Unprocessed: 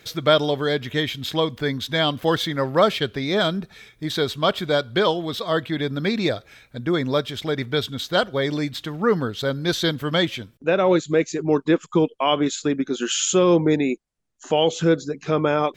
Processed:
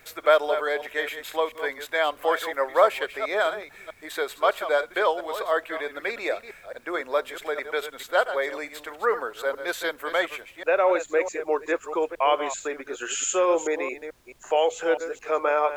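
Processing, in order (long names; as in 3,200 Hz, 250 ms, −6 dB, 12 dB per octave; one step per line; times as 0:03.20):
delay that plays each chunk backwards 217 ms, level −10.5 dB
high-pass filter 490 Hz 24 dB per octave
flat-topped bell 4,300 Hz −12 dB 1.2 octaves
background noise pink −61 dBFS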